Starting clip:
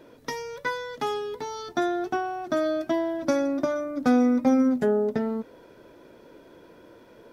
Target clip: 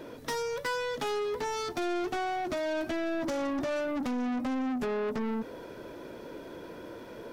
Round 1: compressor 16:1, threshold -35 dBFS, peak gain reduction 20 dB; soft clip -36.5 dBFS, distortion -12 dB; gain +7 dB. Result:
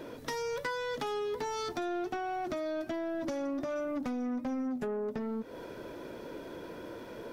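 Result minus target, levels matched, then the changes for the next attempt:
compressor: peak gain reduction +10.5 dB
change: compressor 16:1, threshold -24 dBFS, peak gain reduction 9.5 dB

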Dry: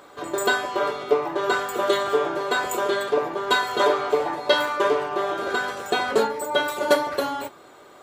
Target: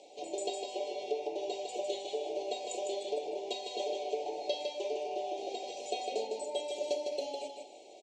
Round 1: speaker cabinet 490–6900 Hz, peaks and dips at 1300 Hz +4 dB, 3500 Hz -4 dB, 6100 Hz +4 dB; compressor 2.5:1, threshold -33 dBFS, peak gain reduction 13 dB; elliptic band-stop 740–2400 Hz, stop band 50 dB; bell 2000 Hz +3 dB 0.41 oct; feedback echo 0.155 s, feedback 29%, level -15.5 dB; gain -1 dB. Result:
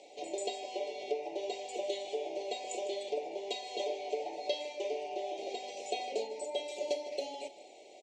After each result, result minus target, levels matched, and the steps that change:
echo-to-direct -10.5 dB; 2000 Hz band +3.5 dB
change: feedback echo 0.155 s, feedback 29%, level -5 dB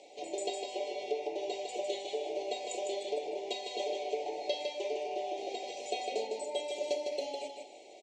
2000 Hz band +3.5 dB
change: bell 2000 Hz -7.5 dB 0.41 oct

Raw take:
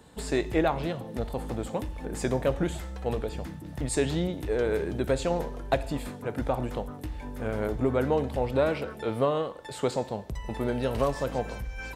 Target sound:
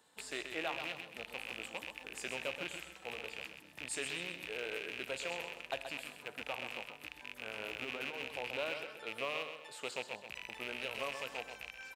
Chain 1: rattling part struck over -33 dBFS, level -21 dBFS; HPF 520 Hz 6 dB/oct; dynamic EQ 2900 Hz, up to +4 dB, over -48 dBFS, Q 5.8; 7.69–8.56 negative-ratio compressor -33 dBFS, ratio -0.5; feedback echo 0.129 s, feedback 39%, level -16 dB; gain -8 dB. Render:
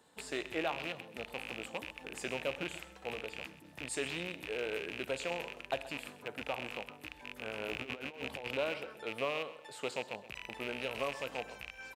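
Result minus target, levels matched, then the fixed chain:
echo-to-direct -8 dB; 500 Hz band +3.0 dB
rattling part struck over -33 dBFS, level -21 dBFS; HPF 1300 Hz 6 dB/oct; dynamic EQ 2900 Hz, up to +4 dB, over -48 dBFS, Q 5.8; 7.69–8.56 negative-ratio compressor -33 dBFS, ratio -0.5; feedback echo 0.129 s, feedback 39%, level -8 dB; gain -8 dB

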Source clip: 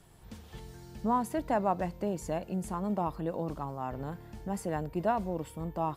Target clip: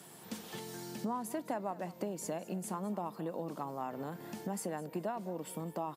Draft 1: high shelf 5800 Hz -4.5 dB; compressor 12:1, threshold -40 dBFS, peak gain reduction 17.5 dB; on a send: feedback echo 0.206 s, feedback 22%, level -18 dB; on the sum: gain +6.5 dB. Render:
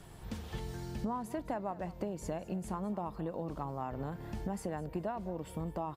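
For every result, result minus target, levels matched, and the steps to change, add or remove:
8000 Hz band -8.0 dB; 125 Hz band +4.0 dB
change: high shelf 5800 Hz +7 dB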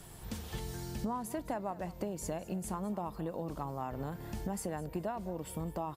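125 Hz band +4.0 dB
add after compressor: HPF 170 Hz 24 dB/oct

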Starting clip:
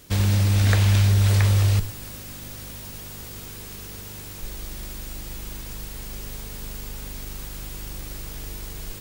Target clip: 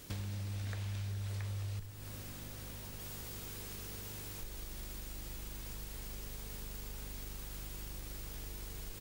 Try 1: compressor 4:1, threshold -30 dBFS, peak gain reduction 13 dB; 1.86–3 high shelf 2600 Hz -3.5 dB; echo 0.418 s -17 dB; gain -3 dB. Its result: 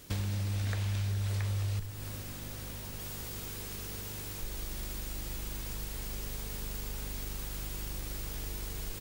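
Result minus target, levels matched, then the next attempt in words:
compressor: peak gain reduction -7 dB
compressor 4:1, threshold -39.5 dBFS, peak gain reduction 20 dB; 1.86–3 high shelf 2600 Hz -3.5 dB; echo 0.418 s -17 dB; gain -3 dB

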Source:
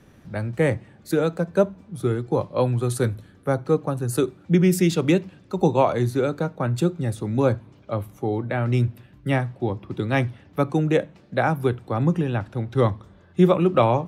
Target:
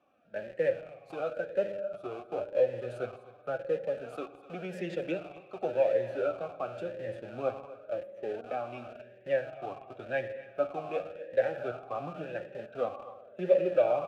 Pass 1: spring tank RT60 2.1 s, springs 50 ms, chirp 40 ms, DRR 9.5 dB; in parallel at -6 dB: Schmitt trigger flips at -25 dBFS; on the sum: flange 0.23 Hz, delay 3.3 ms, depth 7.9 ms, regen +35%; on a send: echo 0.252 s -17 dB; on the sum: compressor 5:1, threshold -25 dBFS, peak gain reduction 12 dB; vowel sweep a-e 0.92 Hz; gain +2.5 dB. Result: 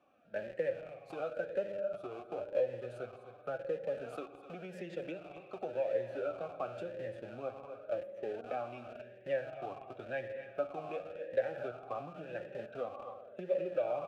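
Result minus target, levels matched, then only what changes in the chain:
compressor: peak gain reduction +12 dB
remove: compressor 5:1, threshold -25 dBFS, peak gain reduction 12 dB

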